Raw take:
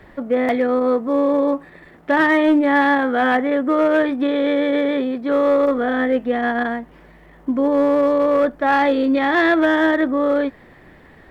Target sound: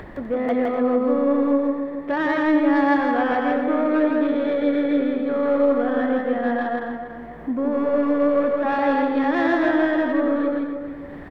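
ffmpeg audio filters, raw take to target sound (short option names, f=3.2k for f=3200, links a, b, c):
-filter_complex "[0:a]asoftclip=type=tanh:threshold=-12dB,asplit=2[a][b];[b]adelay=283,lowpass=f=2k:p=1,volume=-7.5dB,asplit=2[c][d];[d]adelay=283,lowpass=f=2k:p=1,volume=0.27,asplit=2[e][f];[f]adelay=283,lowpass=f=2k:p=1,volume=0.27[g];[c][e][g]amix=inputs=3:normalize=0[h];[a][h]amix=inputs=2:normalize=0,acompressor=mode=upward:threshold=-24dB:ratio=2.5,highshelf=f=2.1k:g=-9.5,asplit=2[i][j];[j]aecho=0:1:163.3|250.7:0.794|0.316[k];[i][k]amix=inputs=2:normalize=0,volume=-3.5dB"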